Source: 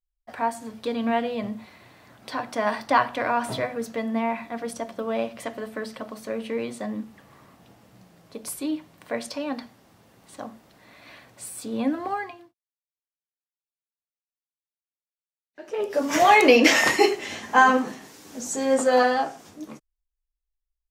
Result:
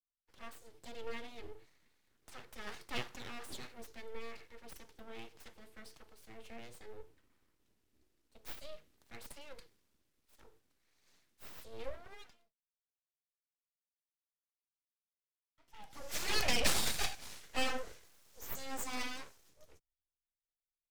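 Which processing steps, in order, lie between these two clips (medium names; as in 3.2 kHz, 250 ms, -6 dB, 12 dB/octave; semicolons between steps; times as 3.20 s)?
amplifier tone stack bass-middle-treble 6-0-2; full-wave rectifier; three bands expanded up and down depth 40%; trim +5 dB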